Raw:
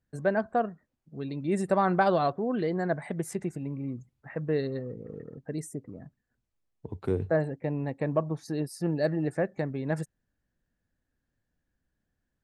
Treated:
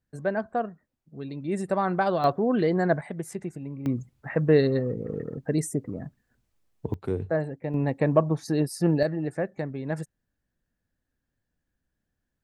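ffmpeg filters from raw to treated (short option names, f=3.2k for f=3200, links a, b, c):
-af "asetnsamples=n=441:p=0,asendcmd='2.24 volume volume 5.5dB;3.01 volume volume -1.5dB;3.86 volume volume 9dB;6.94 volume volume -0.5dB;7.74 volume volume 6.5dB;9.03 volume volume -0.5dB',volume=-1dB"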